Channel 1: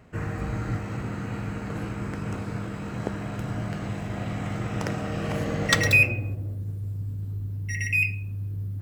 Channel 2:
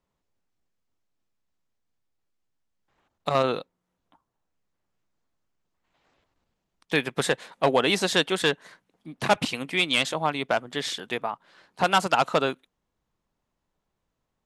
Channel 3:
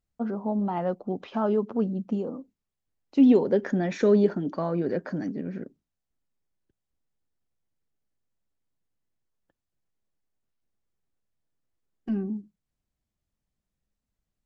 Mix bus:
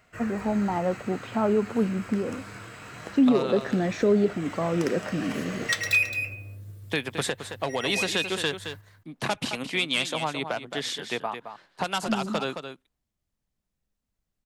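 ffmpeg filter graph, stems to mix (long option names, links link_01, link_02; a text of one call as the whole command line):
ffmpeg -i stem1.wav -i stem2.wav -i stem3.wav -filter_complex "[0:a]tiltshelf=frequency=670:gain=-8.5,bandreject=frequency=840:width=12,flanger=delay=1.4:depth=9:regen=66:speed=0.24:shape=sinusoidal,volume=-2.5dB,asplit=2[link_01][link_02];[link_02]volume=-10dB[link_03];[1:a]agate=range=-33dB:threshold=-54dB:ratio=3:detection=peak,acrossover=split=140|3000[link_04][link_05][link_06];[link_05]acompressor=threshold=-23dB:ratio=6[link_07];[link_04][link_07][link_06]amix=inputs=3:normalize=0,volume=-0.5dB,asplit=3[link_08][link_09][link_10];[link_09]volume=-9.5dB[link_11];[2:a]volume=1.5dB[link_12];[link_10]apad=whole_len=388712[link_13];[link_01][link_13]sidechaincompress=threshold=-31dB:ratio=8:attack=16:release=217[link_14];[link_03][link_11]amix=inputs=2:normalize=0,aecho=0:1:218:1[link_15];[link_14][link_08][link_12][link_15]amix=inputs=4:normalize=0,alimiter=limit=-12.5dB:level=0:latency=1:release=397" out.wav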